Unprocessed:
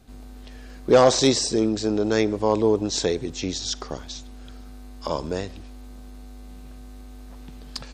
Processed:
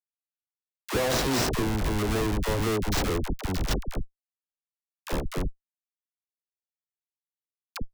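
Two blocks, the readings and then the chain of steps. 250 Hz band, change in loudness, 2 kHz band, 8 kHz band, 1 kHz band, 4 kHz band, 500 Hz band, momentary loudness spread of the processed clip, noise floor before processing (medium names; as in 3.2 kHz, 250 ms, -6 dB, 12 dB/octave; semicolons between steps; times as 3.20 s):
-6.0 dB, -6.0 dB, +1.0 dB, -6.5 dB, -5.5 dB, -6.0 dB, -9.5 dB, 14 LU, -41 dBFS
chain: Schmitt trigger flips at -22.5 dBFS; phase dispersion lows, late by 61 ms, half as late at 560 Hz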